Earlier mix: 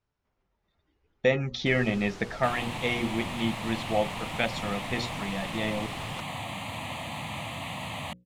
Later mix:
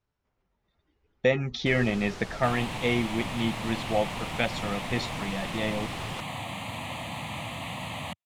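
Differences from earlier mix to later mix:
first sound +3.5 dB
master: remove mains-hum notches 60/120/180/240/300/360/420/480/540 Hz

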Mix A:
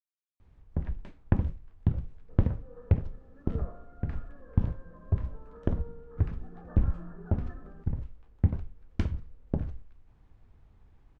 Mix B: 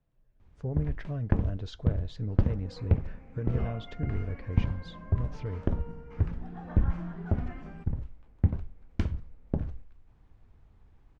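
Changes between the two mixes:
speech: unmuted
second sound: remove Chebyshev low-pass with heavy ripple 1,800 Hz, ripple 9 dB

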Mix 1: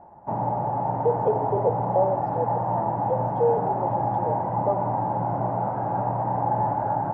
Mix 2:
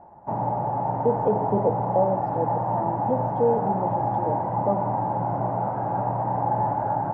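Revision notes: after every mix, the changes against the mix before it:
speech: remove linear-phase brick-wall high-pass 340 Hz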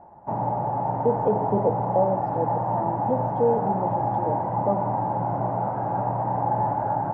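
nothing changed

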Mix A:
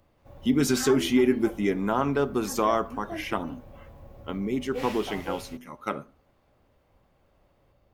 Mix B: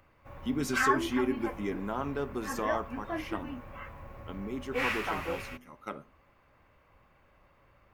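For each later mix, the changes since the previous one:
speech −9.0 dB
background: add flat-topped bell 1,600 Hz +11 dB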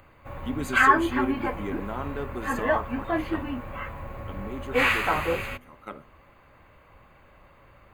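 background +9.0 dB
master: add Butterworth band-reject 5,500 Hz, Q 4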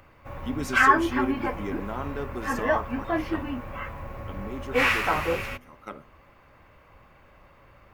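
master: remove Butterworth band-reject 5,500 Hz, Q 4

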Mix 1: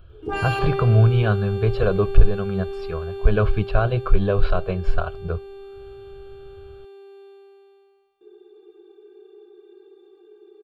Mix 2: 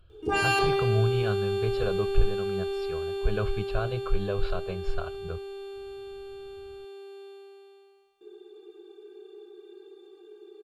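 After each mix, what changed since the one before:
speech −10.5 dB
master: add parametric band 7,400 Hz +10.5 dB 2 octaves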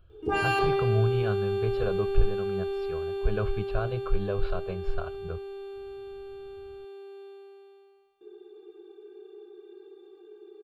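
master: add parametric band 7,400 Hz −10.5 dB 2 octaves

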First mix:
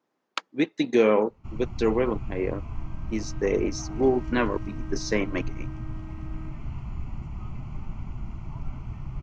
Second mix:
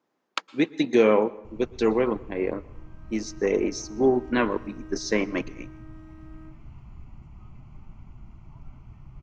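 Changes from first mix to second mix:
first sound −10.5 dB
second sound −3.0 dB
reverb: on, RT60 0.90 s

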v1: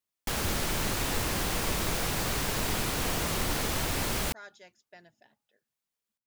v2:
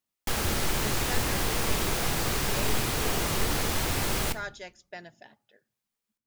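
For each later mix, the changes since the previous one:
speech +10.5 dB
reverb: on, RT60 0.45 s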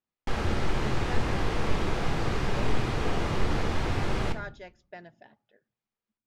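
background: send +6.0 dB
master: add head-to-tape spacing loss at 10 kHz 24 dB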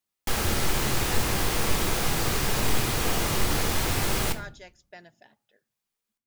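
speech −4.5 dB
master: remove head-to-tape spacing loss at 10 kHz 24 dB

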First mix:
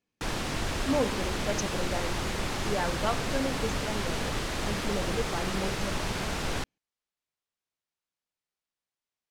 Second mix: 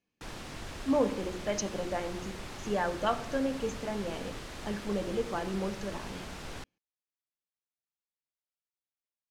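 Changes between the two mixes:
speech: send +6.0 dB
background −11.0 dB

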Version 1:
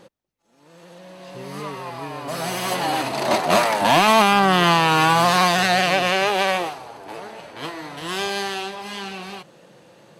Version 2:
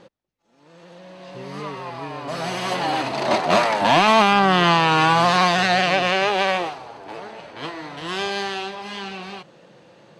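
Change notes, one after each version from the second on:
master: add low-pass filter 5,700 Hz 12 dB per octave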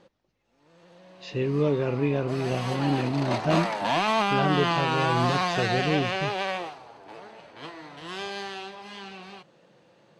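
speech +11.5 dB
background −9.0 dB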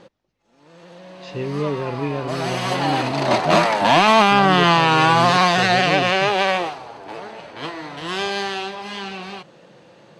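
background +10.5 dB

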